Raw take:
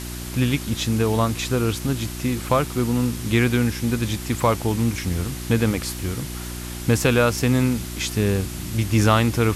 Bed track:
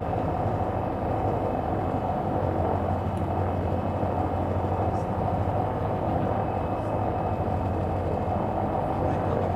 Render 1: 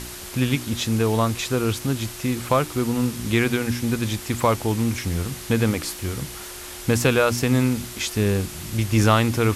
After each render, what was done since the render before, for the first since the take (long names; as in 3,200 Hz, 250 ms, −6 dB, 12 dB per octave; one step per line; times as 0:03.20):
hum removal 60 Hz, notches 5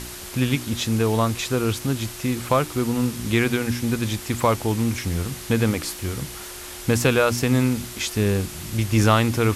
no processing that can be heard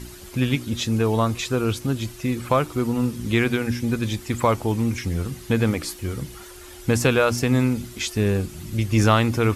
broadband denoise 10 dB, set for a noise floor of −37 dBFS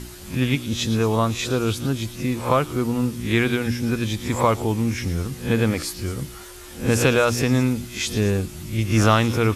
peak hold with a rise ahead of every peak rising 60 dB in 0.33 s
echo through a band-pass that steps 112 ms, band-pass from 4,300 Hz, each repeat 0.7 octaves, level −9.5 dB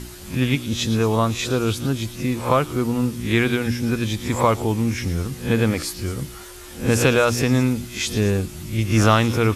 level +1 dB